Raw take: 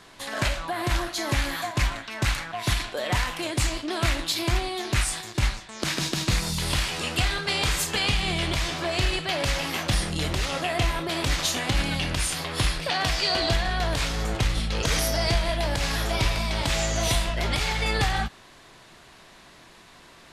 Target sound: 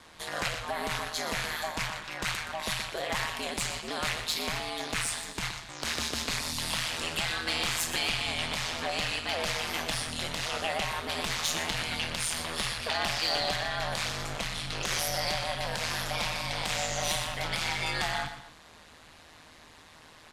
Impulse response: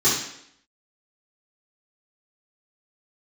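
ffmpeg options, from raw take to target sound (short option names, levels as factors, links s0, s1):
-filter_complex "[0:a]equalizer=f=300:t=o:w=0.38:g=-6.5,acrossover=split=540|1600[s0][s1][s2];[s0]acompressor=threshold=0.02:ratio=10[s3];[s3][s1][s2]amix=inputs=3:normalize=0,asoftclip=type=tanh:threshold=0.126,aeval=exprs='val(0)*sin(2*PI*79*n/s)':c=same,aecho=1:1:121|249:0.299|0.112"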